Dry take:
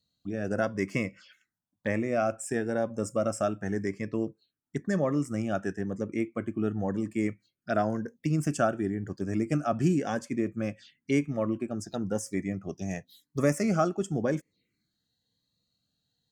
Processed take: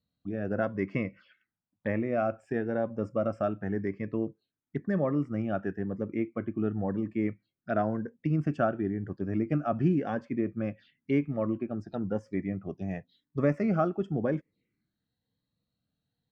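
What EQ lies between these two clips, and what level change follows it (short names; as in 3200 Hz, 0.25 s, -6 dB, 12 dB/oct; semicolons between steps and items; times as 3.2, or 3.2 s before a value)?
air absorption 370 m; bell 11000 Hz -10 dB 0.71 oct; 0.0 dB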